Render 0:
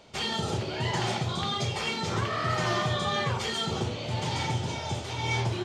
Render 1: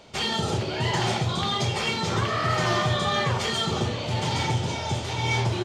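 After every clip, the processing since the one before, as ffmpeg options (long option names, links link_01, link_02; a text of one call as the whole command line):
ffmpeg -i in.wav -filter_complex "[0:a]aecho=1:1:674:0.211,asplit=2[link_01][link_02];[link_02]aeval=exprs='clip(val(0),-1,0.0562)':channel_layout=same,volume=-4.5dB[link_03];[link_01][link_03]amix=inputs=2:normalize=0" out.wav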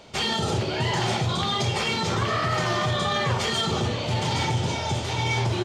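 ffmpeg -i in.wav -af "alimiter=limit=-18dB:level=0:latency=1:release=28,volume=2dB" out.wav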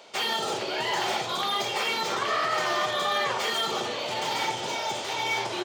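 ffmpeg -i in.wav -filter_complex "[0:a]highpass=440,acrossover=split=3200[link_01][link_02];[link_02]asoftclip=type=hard:threshold=-34.5dB[link_03];[link_01][link_03]amix=inputs=2:normalize=0" out.wav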